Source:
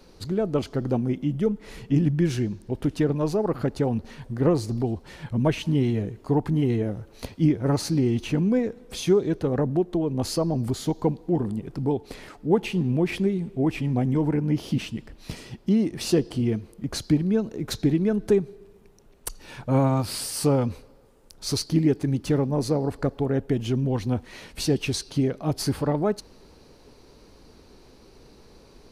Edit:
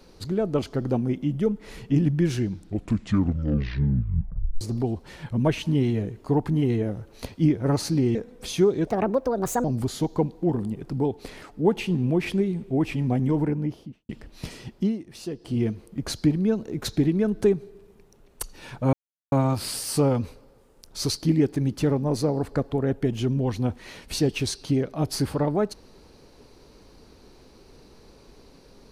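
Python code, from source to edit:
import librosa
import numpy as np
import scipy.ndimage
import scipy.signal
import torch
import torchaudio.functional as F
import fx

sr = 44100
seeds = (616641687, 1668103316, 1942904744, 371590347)

y = fx.studio_fade_out(x, sr, start_s=14.21, length_s=0.74)
y = fx.edit(y, sr, fx.tape_stop(start_s=2.38, length_s=2.23),
    fx.cut(start_s=8.15, length_s=0.49),
    fx.speed_span(start_s=9.36, length_s=1.14, speed=1.48),
    fx.fade_down_up(start_s=15.66, length_s=0.78, db=-12.0, fade_s=0.18),
    fx.insert_silence(at_s=19.79, length_s=0.39), tone=tone)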